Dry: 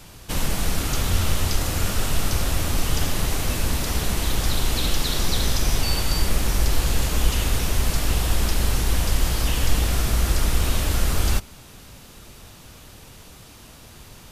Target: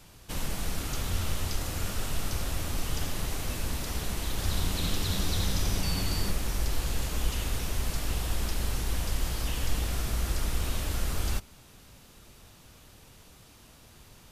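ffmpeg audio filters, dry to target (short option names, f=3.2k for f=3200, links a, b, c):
-filter_complex "[0:a]asettb=1/sr,asplit=3[a][b][c];[a]atrim=end=4.294[d];[b]atrim=start=4.29:end=6.31,asetpts=PTS-STARTPTS,afade=t=in:d=0.004:c=qsin,afade=t=out:st=2.016:d=0.004:c=qsin,asplit=7[e][f][g][h][i][j][k];[f]adelay=90,afreqshift=-100,volume=-5dB[l];[g]adelay=180,afreqshift=-200,volume=-11.6dB[m];[h]adelay=270,afreqshift=-300,volume=-18.1dB[n];[i]adelay=360,afreqshift=-400,volume=-24.7dB[o];[j]adelay=450,afreqshift=-500,volume=-31.2dB[p];[k]adelay=540,afreqshift=-600,volume=-37.8dB[q];[e][l][m][n][o][p][q]amix=inputs=7:normalize=0,atrim=end_sample=89082[r];[c]atrim=start=6.306[s];[d][r]acrossfade=d=0.004:c1=hsin:c2=qsin[t];[t][s]acrossfade=d=0.004:c1=qsin:c2=hsin,volume=-9dB"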